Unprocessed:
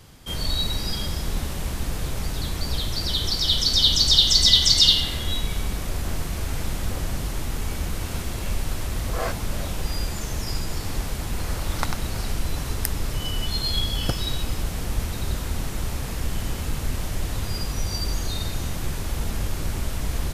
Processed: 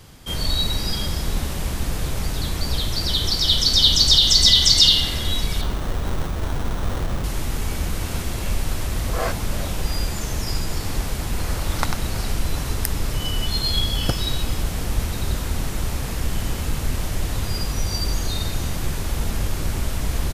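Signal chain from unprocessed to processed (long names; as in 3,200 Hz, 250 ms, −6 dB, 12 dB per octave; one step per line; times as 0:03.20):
0:05.61–0:07.24: sample-rate reduction 2,400 Hz, jitter 0%
on a send: single-tap delay 721 ms −23.5 dB
on the sum: boost into a limiter +4.5 dB
level −1.5 dB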